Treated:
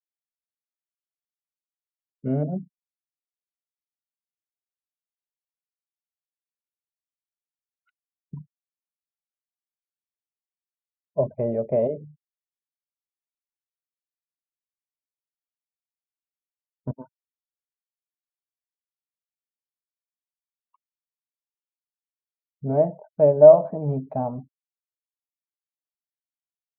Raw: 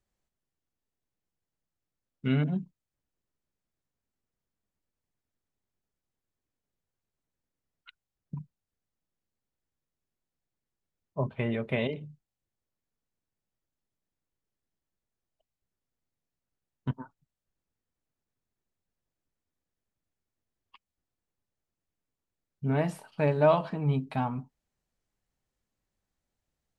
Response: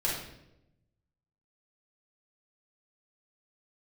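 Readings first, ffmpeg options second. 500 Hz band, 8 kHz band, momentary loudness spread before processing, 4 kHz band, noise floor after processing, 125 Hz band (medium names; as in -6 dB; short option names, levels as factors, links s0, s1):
+12.0 dB, no reading, 19 LU, under -25 dB, under -85 dBFS, +0.5 dB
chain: -af "afftfilt=real='re*gte(hypot(re,im),0.00631)':imag='im*gte(hypot(re,im),0.00631)':win_size=1024:overlap=0.75,lowpass=f=610:t=q:w=4.9"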